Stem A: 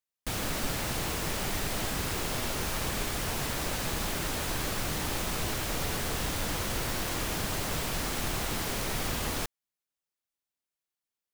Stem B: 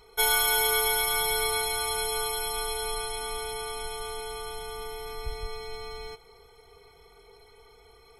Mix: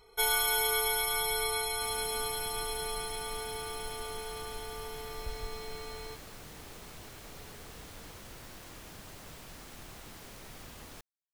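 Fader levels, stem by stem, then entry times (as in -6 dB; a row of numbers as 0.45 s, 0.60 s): -16.5 dB, -4.5 dB; 1.55 s, 0.00 s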